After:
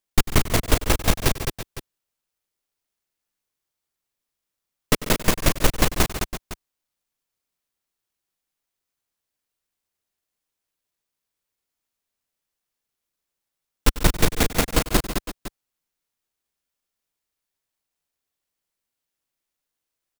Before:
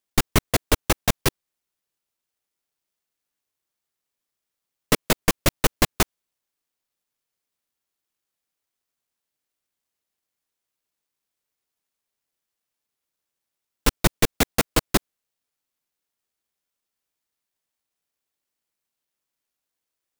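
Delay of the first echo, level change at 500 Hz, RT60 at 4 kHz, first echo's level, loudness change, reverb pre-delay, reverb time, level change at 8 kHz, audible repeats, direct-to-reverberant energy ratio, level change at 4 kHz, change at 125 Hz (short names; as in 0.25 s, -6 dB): 96 ms, +0.5 dB, none, -16.5 dB, 0.0 dB, none, none, 0.0 dB, 5, none, 0.0 dB, +2.5 dB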